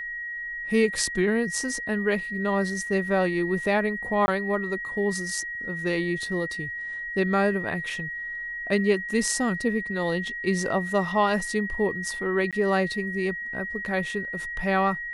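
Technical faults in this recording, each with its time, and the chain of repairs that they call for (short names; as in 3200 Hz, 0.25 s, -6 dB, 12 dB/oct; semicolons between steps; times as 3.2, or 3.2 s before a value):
tone 1900 Hz -31 dBFS
4.26–4.28 gap 20 ms
12.51–12.53 gap 17 ms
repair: notch 1900 Hz, Q 30; interpolate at 4.26, 20 ms; interpolate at 12.51, 17 ms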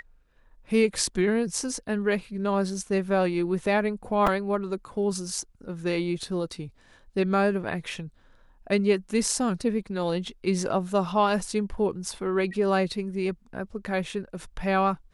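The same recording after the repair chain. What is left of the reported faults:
none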